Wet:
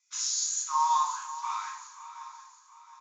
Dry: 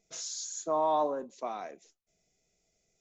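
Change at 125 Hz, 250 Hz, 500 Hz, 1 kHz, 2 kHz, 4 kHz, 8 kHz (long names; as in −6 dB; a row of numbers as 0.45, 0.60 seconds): below −40 dB, below −40 dB, below −40 dB, +5.0 dB, +8.0 dB, +8.0 dB, can't be measured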